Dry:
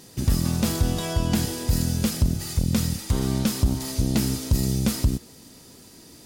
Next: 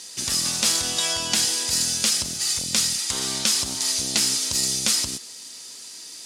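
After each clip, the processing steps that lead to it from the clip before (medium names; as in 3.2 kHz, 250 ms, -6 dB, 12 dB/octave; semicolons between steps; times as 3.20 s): frequency weighting ITU-R 468; trim +1 dB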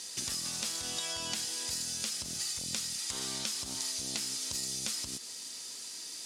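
compression 6:1, threshold -30 dBFS, peak gain reduction 12.5 dB; trim -3.5 dB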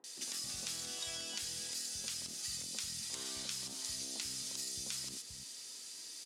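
three bands offset in time mids, highs, lows 40/260 ms, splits 200/970 Hz; trim -5.5 dB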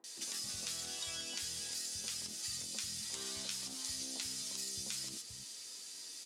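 flange 0.38 Hz, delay 8.8 ms, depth 3 ms, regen +42%; trim +4 dB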